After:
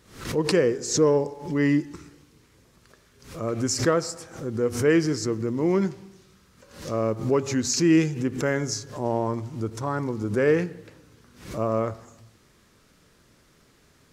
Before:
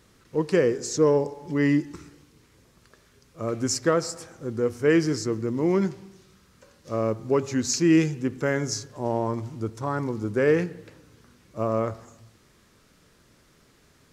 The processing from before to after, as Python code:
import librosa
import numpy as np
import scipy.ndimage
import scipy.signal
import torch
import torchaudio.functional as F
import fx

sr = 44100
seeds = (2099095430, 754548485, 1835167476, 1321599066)

y = fx.pre_swell(x, sr, db_per_s=110.0)